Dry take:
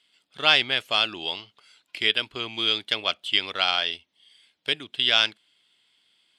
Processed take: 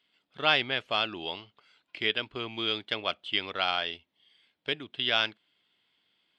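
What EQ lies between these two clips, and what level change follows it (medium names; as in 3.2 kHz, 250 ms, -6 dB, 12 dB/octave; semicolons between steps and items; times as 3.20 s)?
tape spacing loss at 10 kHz 23 dB; 0.0 dB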